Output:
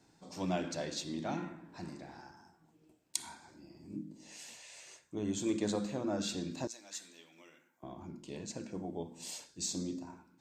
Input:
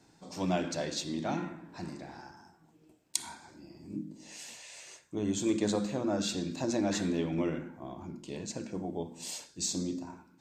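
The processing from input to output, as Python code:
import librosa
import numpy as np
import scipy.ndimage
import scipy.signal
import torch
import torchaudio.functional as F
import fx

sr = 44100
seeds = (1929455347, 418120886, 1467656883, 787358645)

y = fx.differentiator(x, sr, at=(6.67, 7.83))
y = y * 10.0 ** (-4.0 / 20.0)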